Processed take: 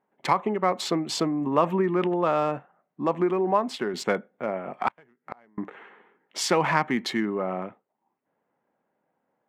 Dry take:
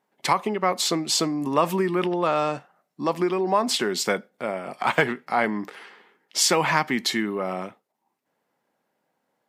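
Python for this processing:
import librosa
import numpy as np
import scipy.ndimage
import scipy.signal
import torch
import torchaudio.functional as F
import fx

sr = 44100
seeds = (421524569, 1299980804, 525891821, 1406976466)

y = fx.wiener(x, sr, points=9)
y = fx.gate_flip(y, sr, shuts_db=-21.0, range_db=-34, at=(4.88, 5.58))
y = fx.high_shelf(y, sr, hz=3900.0, db=-11.5)
y = fx.upward_expand(y, sr, threshold_db=-31.0, expansion=1.5, at=(3.51, 3.94))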